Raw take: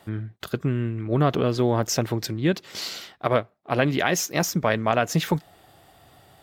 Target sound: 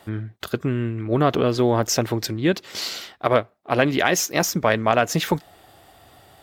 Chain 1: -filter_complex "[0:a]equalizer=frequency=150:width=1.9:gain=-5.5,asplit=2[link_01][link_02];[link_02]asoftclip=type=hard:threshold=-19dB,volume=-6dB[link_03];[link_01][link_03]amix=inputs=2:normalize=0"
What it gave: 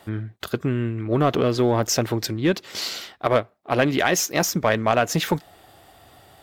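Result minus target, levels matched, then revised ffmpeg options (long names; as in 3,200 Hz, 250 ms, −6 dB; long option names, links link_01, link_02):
hard clipping: distortion +24 dB
-filter_complex "[0:a]equalizer=frequency=150:width=1.9:gain=-5.5,asplit=2[link_01][link_02];[link_02]asoftclip=type=hard:threshold=-8.5dB,volume=-6dB[link_03];[link_01][link_03]amix=inputs=2:normalize=0"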